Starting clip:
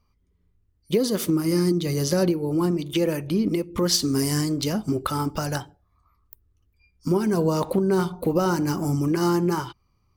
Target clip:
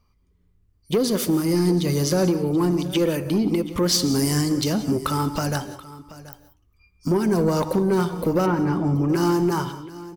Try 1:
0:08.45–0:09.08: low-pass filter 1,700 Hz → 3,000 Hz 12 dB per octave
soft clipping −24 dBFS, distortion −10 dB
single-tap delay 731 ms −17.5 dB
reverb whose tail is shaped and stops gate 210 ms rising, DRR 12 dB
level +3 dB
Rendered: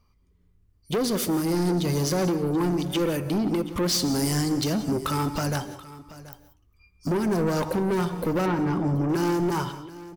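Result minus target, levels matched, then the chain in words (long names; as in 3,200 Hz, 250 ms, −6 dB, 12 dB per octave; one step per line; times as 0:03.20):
soft clipping: distortion +9 dB
0:08.45–0:09.08: low-pass filter 1,700 Hz → 3,000 Hz 12 dB per octave
soft clipping −16 dBFS, distortion −18 dB
single-tap delay 731 ms −17.5 dB
reverb whose tail is shaped and stops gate 210 ms rising, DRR 12 dB
level +3 dB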